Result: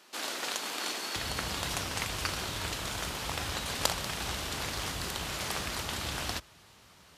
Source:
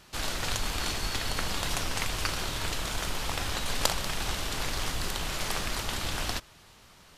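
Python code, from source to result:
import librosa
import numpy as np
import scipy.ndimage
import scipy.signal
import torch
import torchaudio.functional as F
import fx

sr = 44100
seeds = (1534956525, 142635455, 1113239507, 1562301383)

y = fx.highpass(x, sr, hz=fx.steps((0.0, 250.0), (1.16, 52.0)), slope=24)
y = y * 10.0 ** (-2.0 / 20.0)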